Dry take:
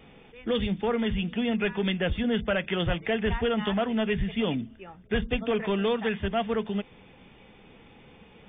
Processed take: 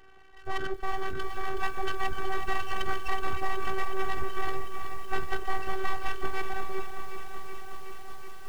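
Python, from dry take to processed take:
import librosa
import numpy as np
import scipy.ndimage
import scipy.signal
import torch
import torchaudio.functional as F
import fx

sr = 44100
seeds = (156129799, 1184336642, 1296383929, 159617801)

y = fx.freq_compress(x, sr, knee_hz=1200.0, ratio=4.0)
y = np.abs(y)
y = fx.robotise(y, sr, hz=384.0)
y = fx.echo_crushed(y, sr, ms=372, feedback_pct=80, bits=8, wet_db=-9.0)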